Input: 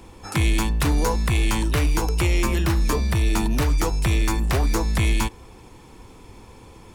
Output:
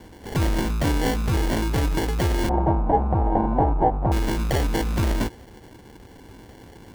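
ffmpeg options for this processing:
ffmpeg -i in.wav -filter_complex "[0:a]highpass=frequency=66:poles=1,acrusher=samples=35:mix=1:aa=0.000001,asoftclip=type=tanh:threshold=-14dB,asettb=1/sr,asplit=3[link_01][link_02][link_03];[link_01]atrim=end=2.494[link_04];[link_02]atrim=start=2.49:end=4.12,asetpts=PTS-STARTPTS,afade=type=in:duration=0.004:curve=qsin,afade=type=out:start_time=1.626:duration=0.004:curve=qsin,lowpass=frequency=790:width_type=q:width=4.9[link_05];[link_03]atrim=start=4.116[link_06];[link_04][link_05]acrossfade=duration=0.004:curve1=hsin:curve2=qsin[link_07];[link_07][link_06]acrossfade=duration=0.004:curve1=qsin:curve2=hsin,volume=1.5dB" out.wav

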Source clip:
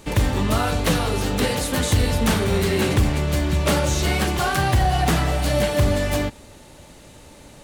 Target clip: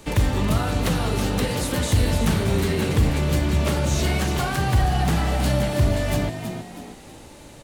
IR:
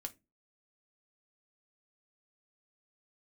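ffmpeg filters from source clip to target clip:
-filter_complex "[0:a]acrossover=split=200[link_01][link_02];[link_02]acompressor=threshold=-24dB:ratio=6[link_03];[link_01][link_03]amix=inputs=2:normalize=0,asplit=5[link_04][link_05][link_06][link_07][link_08];[link_05]adelay=322,afreqshift=65,volume=-9dB[link_09];[link_06]adelay=644,afreqshift=130,volume=-17.2dB[link_10];[link_07]adelay=966,afreqshift=195,volume=-25.4dB[link_11];[link_08]adelay=1288,afreqshift=260,volume=-33.5dB[link_12];[link_04][link_09][link_10][link_11][link_12]amix=inputs=5:normalize=0"

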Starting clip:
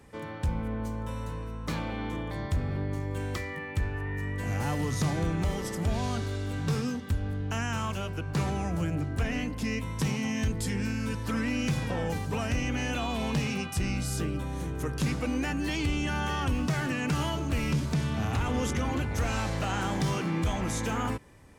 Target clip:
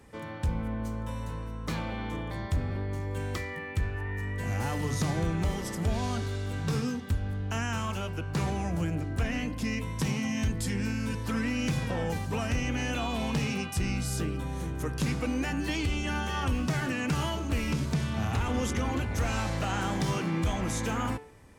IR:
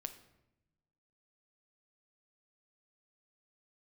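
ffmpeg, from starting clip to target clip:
-af "bandreject=frequency=146.3:width_type=h:width=4,bandreject=frequency=292.6:width_type=h:width=4,bandreject=frequency=438.9:width_type=h:width=4,bandreject=frequency=585.2:width_type=h:width=4,bandreject=frequency=731.5:width_type=h:width=4,bandreject=frequency=877.8:width_type=h:width=4,bandreject=frequency=1024.1:width_type=h:width=4,bandreject=frequency=1170.4:width_type=h:width=4,bandreject=frequency=1316.7:width_type=h:width=4,bandreject=frequency=1463:width_type=h:width=4,bandreject=frequency=1609.3:width_type=h:width=4,bandreject=frequency=1755.6:width_type=h:width=4,bandreject=frequency=1901.9:width_type=h:width=4,bandreject=frequency=2048.2:width_type=h:width=4,bandreject=frequency=2194.5:width_type=h:width=4,bandreject=frequency=2340.8:width_type=h:width=4,bandreject=frequency=2487.1:width_type=h:width=4,bandreject=frequency=2633.4:width_type=h:width=4,bandreject=frequency=2779.7:width_type=h:width=4,bandreject=frequency=2926:width_type=h:width=4,bandreject=frequency=3072.3:width_type=h:width=4,bandreject=frequency=3218.6:width_type=h:width=4,bandreject=frequency=3364.9:width_type=h:width=4,bandreject=frequency=3511.2:width_type=h:width=4,bandreject=frequency=3657.5:width_type=h:width=4,bandreject=frequency=3803.8:width_type=h:width=4,bandreject=frequency=3950.1:width_type=h:width=4,bandreject=frequency=4096.4:width_type=h:width=4,bandreject=frequency=4242.7:width_type=h:width=4,bandreject=frequency=4389:width_type=h:width=4,bandreject=frequency=4535.3:width_type=h:width=4,bandreject=frequency=4681.6:width_type=h:width=4,bandreject=frequency=4827.9:width_type=h:width=4"

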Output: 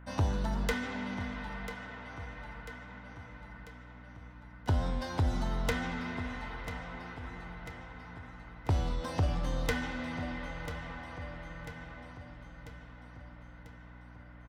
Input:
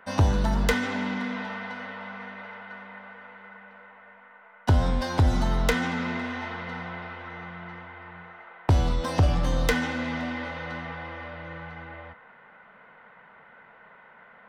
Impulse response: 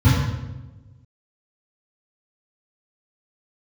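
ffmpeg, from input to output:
-filter_complex "[0:a]aeval=exprs='val(0)+0.00891*(sin(2*PI*60*n/s)+sin(2*PI*2*60*n/s)/2+sin(2*PI*3*60*n/s)/3+sin(2*PI*4*60*n/s)/4+sin(2*PI*5*60*n/s)/5)':channel_layout=same,asplit=2[link_01][link_02];[link_02]aecho=0:1:993|1986|2979|3972|4965|5958:0.251|0.143|0.0816|0.0465|0.0265|0.0151[link_03];[link_01][link_03]amix=inputs=2:normalize=0,volume=-8.5dB"

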